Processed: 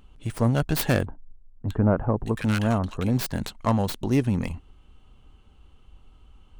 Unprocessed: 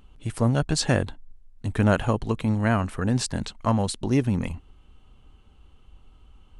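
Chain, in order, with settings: tracing distortion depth 0.24 ms; 1.06–3.19 bands offset in time lows, highs 0.62 s, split 1300 Hz

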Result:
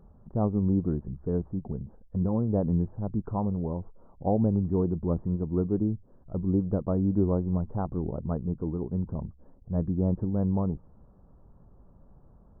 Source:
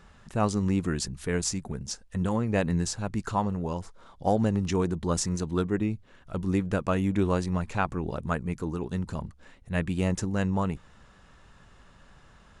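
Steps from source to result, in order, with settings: Gaussian blur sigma 11 samples; gain +1.5 dB

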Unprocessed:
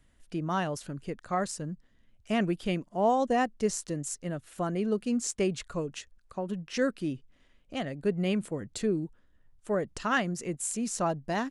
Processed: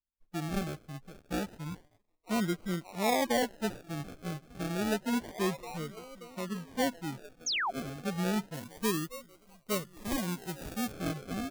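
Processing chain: dynamic EQ 2000 Hz, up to -3 dB, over -47 dBFS, Q 1.2; harmonic-percussive split percussive -15 dB; delay with a stepping band-pass 0.581 s, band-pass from 2800 Hz, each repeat -0.7 oct, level -4 dB; expander -47 dBFS; decimation with a swept rate 36×, swing 60% 0.29 Hz; 7.46–7.71 painted sound fall 630–7100 Hz -29 dBFS; 8.54–10.92 high shelf 5700 Hz +9.5 dB; gain -2 dB

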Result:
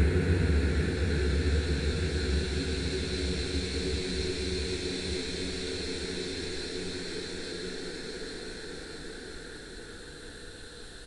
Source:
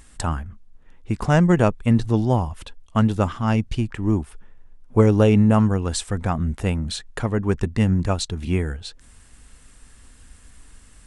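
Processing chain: speakerphone echo 0.29 s, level -7 dB; Paulstretch 27×, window 0.50 s, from 8.7

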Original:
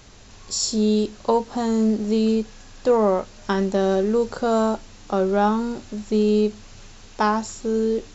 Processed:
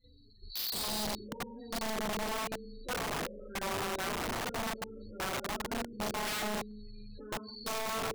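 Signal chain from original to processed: nonlinear frequency compression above 3800 Hz 4:1; limiter -17 dBFS, peak gain reduction 9 dB; notches 60/120/180/240/300 Hz; flange 0.31 Hz, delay 3.8 ms, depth 6.9 ms, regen +33%; band shelf 890 Hz -13 dB 1.1 oct; on a send: flutter echo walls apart 6.6 m, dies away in 0.64 s; on the sum: plate-style reverb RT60 1.1 s, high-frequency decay 0.9×, pre-delay 0 ms, DRR -5.5 dB; loudest bins only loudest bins 16; level quantiser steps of 13 dB; wrapped overs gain 23 dB; gain -7.5 dB

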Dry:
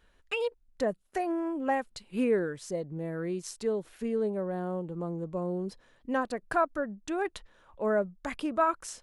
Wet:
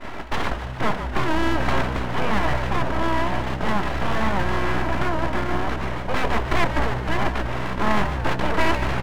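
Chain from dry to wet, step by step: per-bin compression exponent 0.2; LPF 2400 Hz; de-hum 87.77 Hz, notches 9; expander -18 dBFS; low shelf 360 Hz +10 dB; comb 3 ms, depth 94%; in parallel at +1 dB: limiter -15.5 dBFS, peak gain reduction 14 dB; on the sum: full-wave rectifier; on a send: frequency-shifting echo 0.148 s, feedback 64%, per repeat -63 Hz, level -9 dB; on the sum: record warp 78 rpm, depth 100 cents; gain -6 dB

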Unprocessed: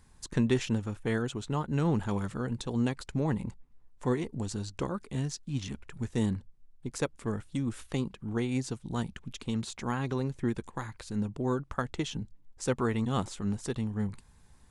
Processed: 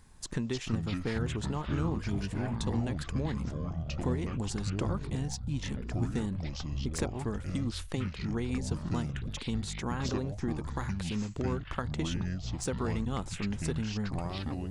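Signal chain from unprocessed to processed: de-esser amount 60%; spectral repair 1.98–2.5, 410–1400 Hz after; compressor, threshold -32 dBFS, peak gain reduction 11 dB; echoes that change speed 0.211 s, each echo -6 st, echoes 3; gain +2 dB

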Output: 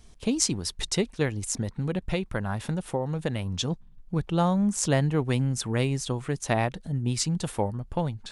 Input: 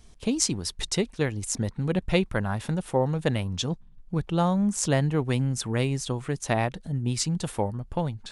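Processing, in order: 1.45–3.47 compressor, threshold -24 dBFS, peak gain reduction 7.5 dB

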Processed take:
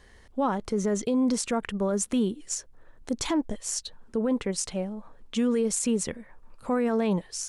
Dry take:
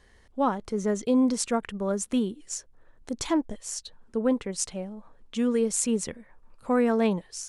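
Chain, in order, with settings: limiter -22 dBFS, peak gain reduction 11 dB; gain +4 dB

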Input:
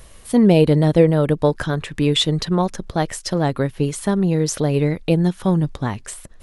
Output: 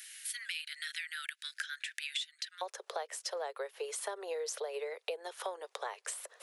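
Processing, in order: steep high-pass 1500 Hz 72 dB/oct, from 2.61 s 430 Hz; compressor 8:1, threshold -38 dBFS, peak gain reduction 22 dB; gain +1.5 dB

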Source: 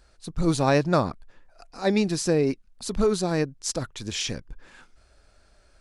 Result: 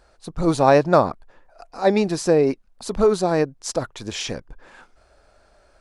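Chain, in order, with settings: bell 720 Hz +10 dB 2.2 oct; gain -1 dB

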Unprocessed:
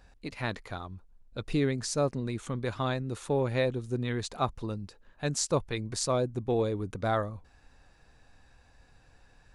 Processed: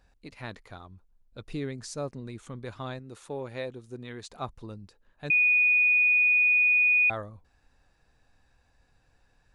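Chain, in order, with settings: 2.99–4.31 low shelf 160 Hz -9 dB; 5.3–7.1 bleep 2470 Hz -12 dBFS; gain -6.5 dB

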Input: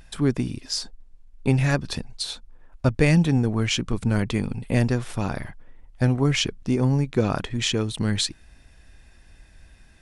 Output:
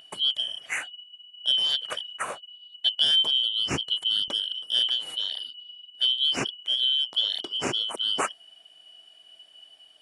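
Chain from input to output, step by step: four-band scrambler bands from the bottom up 3412; HPF 87 Hz 12 dB/oct, from 4.28 s 190 Hz; bell 5100 Hz -14.5 dB 0.8 oct

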